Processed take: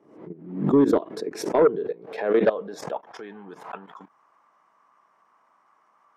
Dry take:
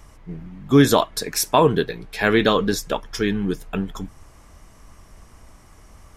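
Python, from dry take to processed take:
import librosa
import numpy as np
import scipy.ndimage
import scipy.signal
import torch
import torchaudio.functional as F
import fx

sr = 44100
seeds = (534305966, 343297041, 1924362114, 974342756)

y = scipy.signal.sosfilt(scipy.signal.butter(4, 150.0, 'highpass', fs=sr, output='sos'), x)
y = fx.level_steps(y, sr, step_db=16)
y = fx.filter_sweep_bandpass(y, sr, from_hz=360.0, to_hz=1100.0, start_s=1.25, end_s=4.08, q=2.8)
y = fx.fold_sine(y, sr, drive_db=4, ceiling_db=-11.5)
y = fx.pre_swell(y, sr, db_per_s=88.0)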